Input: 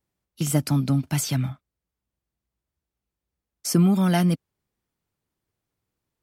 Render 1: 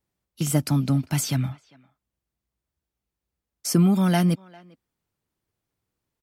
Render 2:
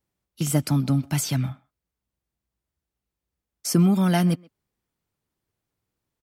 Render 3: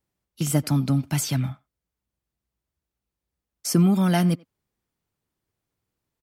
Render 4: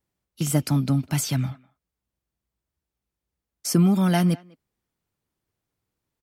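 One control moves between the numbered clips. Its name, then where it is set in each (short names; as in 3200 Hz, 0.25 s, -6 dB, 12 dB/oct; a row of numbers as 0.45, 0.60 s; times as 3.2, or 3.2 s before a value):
speakerphone echo, time: 400, 130, 90, 200 ms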